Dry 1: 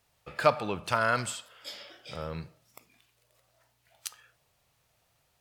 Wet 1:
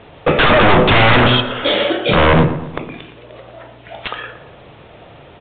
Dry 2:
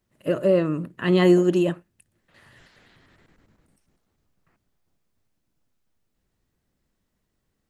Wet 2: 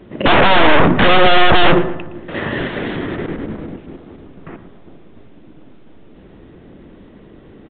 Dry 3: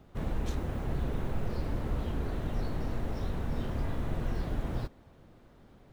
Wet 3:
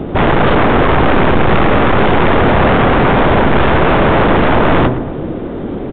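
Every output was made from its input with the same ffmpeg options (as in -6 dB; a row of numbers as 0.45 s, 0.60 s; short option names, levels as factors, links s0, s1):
-filter_complex "[0:a]equalizer=f=340:w=0.65:g=13,bandreject=f=125.5:t=h:w=4,bandreject=f=251:t=h:w=4,bandreject=f=376.5:t=h:w=4,bandreject=f=502:t=h:w=4,bandreject=f=627.5:t=h:w=4,bandreject=f=753:t=h:w=4,bandreject=f=878.5:t=h:w=4,bandreject=f=1004:t=h:w=4,bandreject=f=1129.5:t=h:w=4,bandreject=f=1255:t=h:w=4,bandreject=f=1380.5:t=h:w=4,bandreject=f=1506:t=h:w=4,bandreject=f=1631.5:t=h:w=4,bandreject=f=1757:t=h:w=4,bandreject=f=1882.5:t=h:w=4,bandreject=f=2008:t=h:w=4,acompressor=threshold=0.141:ratio=3,aresample=16000,aeval=exprs='clip(val(0),-1,0.0299)':c=same,aresample=44100,apsyclip=13.3,aeval=exprs='0.282*(abs(mod(val(0)/0.282+3,4)-2)-1)':c=same,asplit=2[s0][s1];[s1]adelay=115,lowpass=f=1900:p=1,volume=0.251,asplit=2[s2][s3];[s3]adelay=115,lowpass=f=1900:p=1,volume=0.54,asplit=2[s4][s5];[s5]adelay=115,lowpass=f=1900:p=1,volume=0.54,asplit=2[s6][s7];[s7]adelay=115,lowpass=f=1900:p=1,volume=0.54,asplit=2[s8][s9];[s9]adelay=115,lowpass=f=1900:p=1,volume=0.54,asplit=2[s10][s11];[s11]adelay=115,lowpass=f=1900:p=1,volume=0.54[s12];[s0][s2][s4][s6][s8][s10][s12]amix=inputs=7:normalize=0,aresample=8000,aresample=44100,volume=1.88"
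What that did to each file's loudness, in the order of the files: +19.0 LU, +7.0 LU, +24.5 LU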